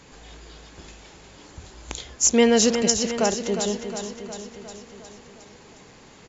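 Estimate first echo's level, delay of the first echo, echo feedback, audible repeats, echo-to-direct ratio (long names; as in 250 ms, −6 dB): −8.5 dB, 359 ms, 60%, 6, −6.5 dB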